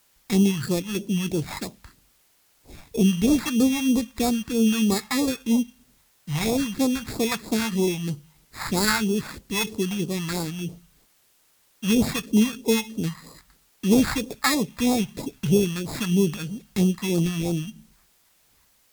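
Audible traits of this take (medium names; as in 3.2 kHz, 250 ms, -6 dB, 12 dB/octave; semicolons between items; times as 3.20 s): aliases and images of a low sample rate 3 kHz, jitter 0%; phasing stages 2, 3.1 Hz, lowest notch 370–1700 Hz; a quantiser's noise floor 10-bit, dither triangular; Vorbis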